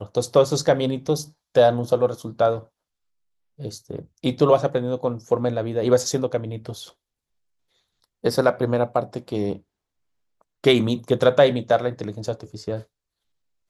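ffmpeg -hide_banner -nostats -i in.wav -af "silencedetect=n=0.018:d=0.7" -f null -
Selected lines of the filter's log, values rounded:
silence_start: 2.61
silence_end: 3.60 | silence_duration: 0.99
silence_start: 6.89
silence_end: 8.24 | silence_duration: 1.35
silence_start: 9.57
silence_end: 10.64 | silence_duration: 1.07
silence_start: 12.82
silence_end: 13.69 | silence_duration: 0.87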